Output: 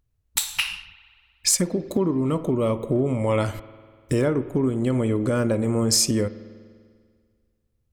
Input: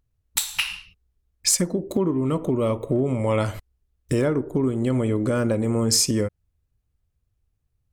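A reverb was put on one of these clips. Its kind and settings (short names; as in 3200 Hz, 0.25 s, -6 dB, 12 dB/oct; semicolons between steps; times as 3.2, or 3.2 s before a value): spring tank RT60 1.9 s, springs 49 ms, chirp 50 ms, DRR 15 dB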